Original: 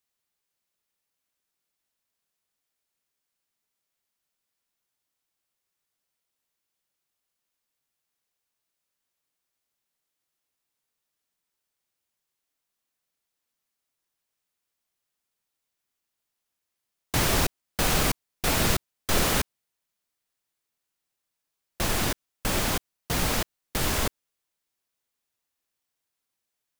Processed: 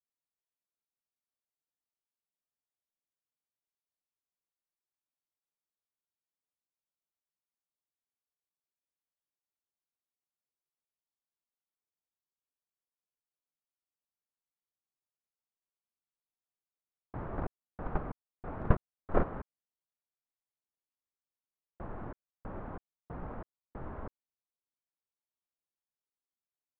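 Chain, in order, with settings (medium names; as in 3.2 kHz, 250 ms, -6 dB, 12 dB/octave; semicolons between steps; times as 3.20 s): low-pass 1.3 kHz 24 dB/octave; gate -20 dBFS, range -23 dB; trim +9 dB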